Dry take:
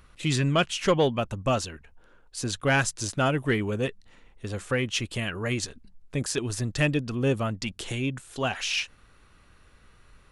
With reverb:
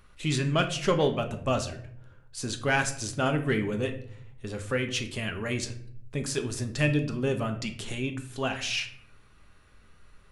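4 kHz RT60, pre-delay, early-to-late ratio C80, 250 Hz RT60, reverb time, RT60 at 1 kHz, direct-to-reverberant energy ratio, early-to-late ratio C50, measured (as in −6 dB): 0.40 s, 5 ms, 15.0 dB, 1.0 s, 0.65 s, 0.55 s, 5.5 dB, 11.5 dB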